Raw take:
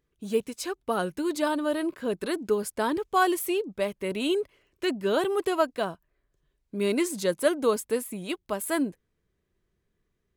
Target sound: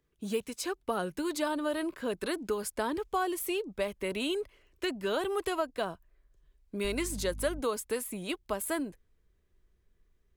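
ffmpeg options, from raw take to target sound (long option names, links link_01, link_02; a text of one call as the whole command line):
ffmpeg -i in.wav -filter_complex "[0:a]asettb=1/sr,asplit=3[link_01][link_02][link_03];[link_01]atrim=end=6.844[link_04];[link_02]atrim=start=6.84:end=7.6,asetpts=PTS-STARTPTS,afade=type=in:duration=0.004:curve=qsin,afade=type=out:start_time=0.756:duration=0.004:curve=qsin,aeval=exprs='val(0)+0.0178*(sin(2*PI*50*n/s)+sin(2*PI*2*50*n/s)/2+sin(2*PI*3*50*n/s)/3+sin(2*PI*4*50*n/s)/4+sin(2*PI*5*50*n/s)/5)':channel_layout=same[link_05];[link_03]atrim=start=7.596[link_06];[link_04][link_05]acrossfade=duration=0.004:curve1=hsin:curve2=qsin[link_07];[link_07][link_06]acrossfade=duration=0.004:curve1=qsin:curve2=hsin,acrossover=split=110|690[link_08][link_09][link_10];[link_08]acompressor=threshold=-51dB:ratio=4[link_11];[link_09]acompressor=threshold=-32dB:ratio=4[link_12];[link_10]acompressor=threshold=-33dB:ratio=4[link_13];[link_11][link_12][link_13]amix=inputs=3:normalize=0,asubboost=boost=4:cutoff=66" out.wav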